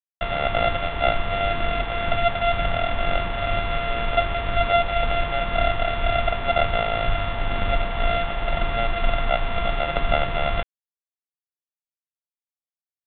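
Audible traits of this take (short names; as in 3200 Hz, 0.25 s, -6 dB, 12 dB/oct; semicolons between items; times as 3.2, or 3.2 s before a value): a buzz of ramps at a fixed pitch in blocks of 64 samples; tremolo triangle 2 Hz, depth 40%; a quantiser's noise floor 6-bit, dither none; µ-law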